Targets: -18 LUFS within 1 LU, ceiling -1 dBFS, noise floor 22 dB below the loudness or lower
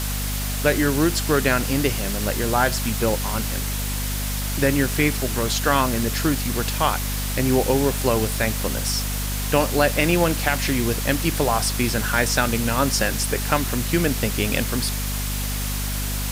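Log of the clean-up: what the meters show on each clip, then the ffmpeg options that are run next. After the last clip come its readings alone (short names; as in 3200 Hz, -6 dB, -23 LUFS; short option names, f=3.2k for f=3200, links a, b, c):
hum 50 Hz; harmonics up to 250 Hz; hum level -24 dBFS; noise floor -26 dBFS; noise floor target -44 dBFS; loudness -21.5 LUFS; peak -4.0 dBFS; loudness target -18.0 LUFS
-> -af "bandreject=f=50:t=h:w=6,bandreject=f=100:t=h:w=6,bandreject=f=150:t=h:w=6,bandreject=f=200:t=h:w=6,bandreject=f=250:t=h:w=6"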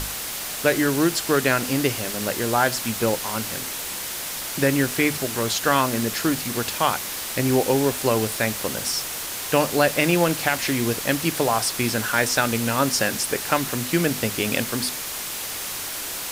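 hum none; noise floor -31 dBFS; noise floor target -45 dBFS
-> -af "afftdn=nr=14:nf=-31"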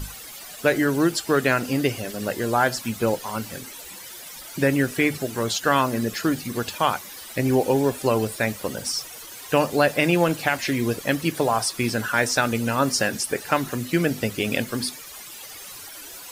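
noise floor -40 dBFS; noise floor target -45 dBFS
-> -af "afftdn=nr=6:nf=-40"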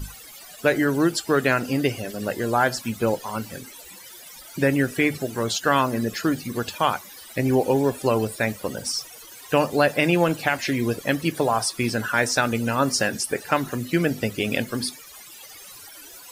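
noise floor -44 dBFS; noise floor target -46 dBFS
-> -af "afftdn=nr=6:nf=-44"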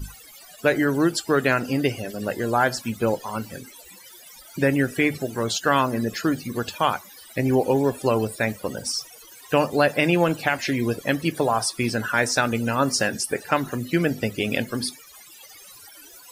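noise floor -47 dBFS; loudness -23.5 LUFS; peak -5.5 dBFS; loudness target -18.0 LUFS
-> -af "volume=5.5dB,alimiter=limit=-1dB:level=0:latency=1"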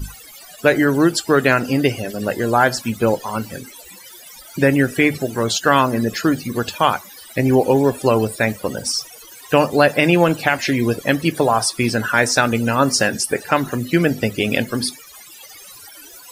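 loudness -18.0 LUFS; peak -1.0 dBFS; noise floor -41 dBFS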